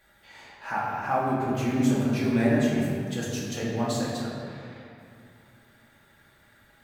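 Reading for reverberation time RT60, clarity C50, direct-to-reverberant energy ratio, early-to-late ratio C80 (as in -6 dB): 2.5 s, -1.0 dB, -7.0 dB, 0.5 dB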